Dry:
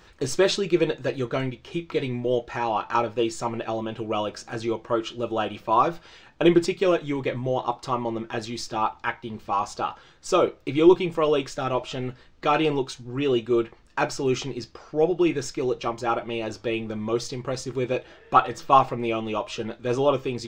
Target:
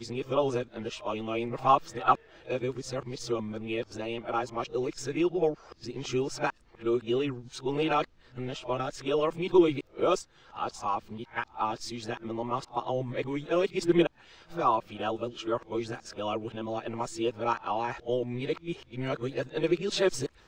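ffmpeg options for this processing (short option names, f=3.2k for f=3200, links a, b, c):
-af "areverse,volume=-5.5dB"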